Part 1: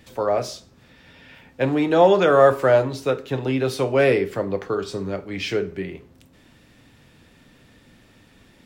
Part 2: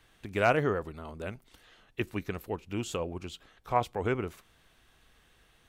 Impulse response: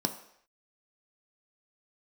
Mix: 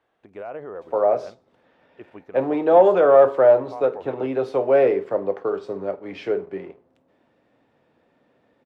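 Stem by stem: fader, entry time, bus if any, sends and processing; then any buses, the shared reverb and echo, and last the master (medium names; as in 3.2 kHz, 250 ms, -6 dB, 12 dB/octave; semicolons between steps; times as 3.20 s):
0.0 dB, 0.75 s, no send, waveshaping leveller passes 1
+1.0 dB, 0.00 s, no send, peak limiter -23 dBFS, peak gain reduction 10.5 dB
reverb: none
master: band-pass filter 620 Hz, Q 1.3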